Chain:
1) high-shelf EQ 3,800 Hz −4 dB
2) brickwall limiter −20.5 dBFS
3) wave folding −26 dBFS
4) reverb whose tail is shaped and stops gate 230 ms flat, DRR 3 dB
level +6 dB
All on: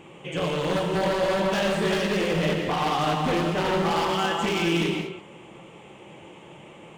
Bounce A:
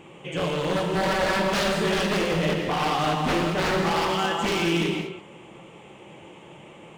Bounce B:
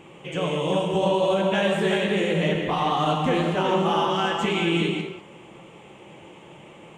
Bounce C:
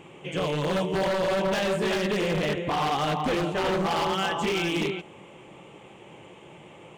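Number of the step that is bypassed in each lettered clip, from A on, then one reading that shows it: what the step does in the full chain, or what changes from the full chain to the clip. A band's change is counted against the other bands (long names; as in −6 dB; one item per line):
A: 2, 8 kHz band +2.0 dB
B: 3, distortion level −8 dB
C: 4, change in crest factor −5.5 dB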